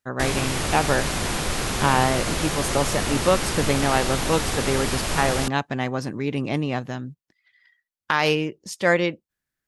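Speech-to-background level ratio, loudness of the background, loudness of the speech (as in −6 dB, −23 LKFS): 1.0 dB, −25.5 LKFS, −24.5 LKFS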